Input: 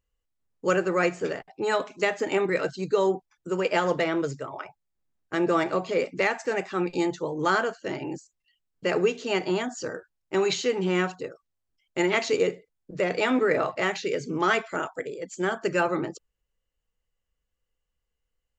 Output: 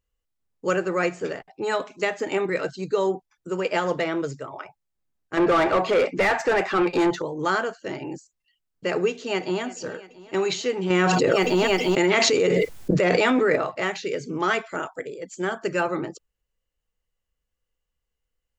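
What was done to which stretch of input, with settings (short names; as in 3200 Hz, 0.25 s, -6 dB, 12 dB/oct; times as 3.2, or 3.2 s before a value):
5.37–7.22 overdrive pedal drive 23 dB, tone 1600 Hz, clips at -11 dBFS
9.08–9.63 echo throw 0.34 s, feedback 70%, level -17.5 dB
10.9–13.56 fast leveller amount 100%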